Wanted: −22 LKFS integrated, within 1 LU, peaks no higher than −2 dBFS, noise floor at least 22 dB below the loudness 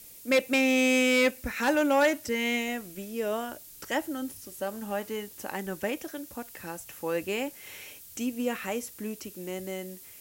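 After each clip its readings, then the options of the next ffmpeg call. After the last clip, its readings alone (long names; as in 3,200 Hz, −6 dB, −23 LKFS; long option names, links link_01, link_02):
background noise floor −49 dBFS; target noise floor −51 dBFS; integrated loudness −29.0 LKFS; sample peak −13.5 dBFS; target loudness −22.0 LKFS
→ -af "afftdn=noise_reduction=6:noise_floor=-49"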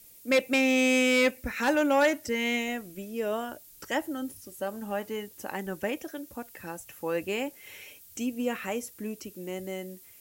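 background noise floor −53 dBFS; integrated loudness −29.0 LKFS; sample peak −14.0 dBFS; target loudness −22.0 LKFS
→ -af "volume=7dB"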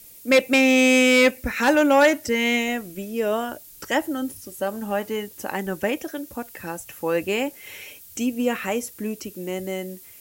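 integrated loudness −22.0 LKFS; sample peak −7.0 dBFS; background noise floor −46 dBFS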